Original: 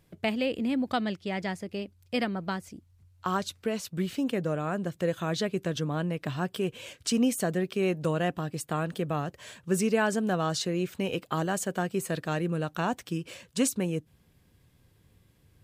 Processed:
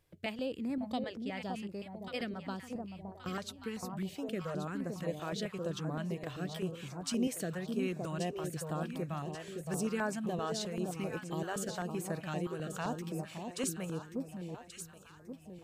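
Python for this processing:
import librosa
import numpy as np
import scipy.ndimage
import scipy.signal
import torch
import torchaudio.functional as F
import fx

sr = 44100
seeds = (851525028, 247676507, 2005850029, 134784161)

p1 = fx.low_shelf(x, sr, hz=160.0, db=10.5, at=(2.75, 3.29))
p2 = p1 + fx.echo_alternate(p1, sr, ms=566, hz=960.0, feedback_pct=64, wet_db=-4.5, dry=0)
p3 = fx.filter_held_notch(p2, sr, hz=7.7, low_hz=200.0, high_hz=3100.0)
y = p3 * 10.0 ** (-7.5 / 20.0)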